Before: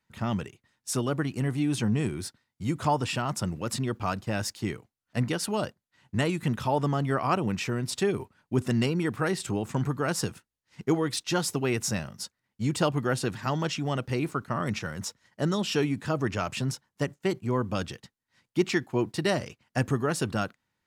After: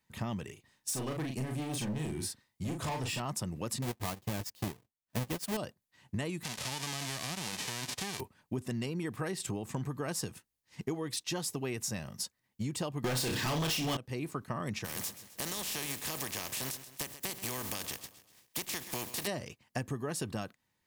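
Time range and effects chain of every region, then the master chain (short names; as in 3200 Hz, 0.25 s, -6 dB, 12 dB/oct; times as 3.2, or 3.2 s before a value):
0.44–3.2 hard clip -28 dBFS + doubler 39 ms -4 dB
3.82–5.57 half-waves squared off + transient shaper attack 0 dB, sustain -7 dB + upward expander, over -37 dBFS
6.42–8.19 spectral whitening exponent 0.1 + LPF 6100 Hz + compressor 5:1, threshold -33 dBFS
13.04–13.97 bell 4000 Hz +9.5 dB 1.8 oct + flutter echo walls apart 5.4 m, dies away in 0.29 s + sample leveller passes 5
14.84–19.26 spectral contrast lowered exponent 0.35 + compressor 3:1, threshold -34 dBFS + feedback echo 0.131 s, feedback 47%, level -16 dB
whole clip: high shelf 9100 Hz +9 dB; notch 1400 Hz, Q 7; compressor 6:1, threshold -33 dBFS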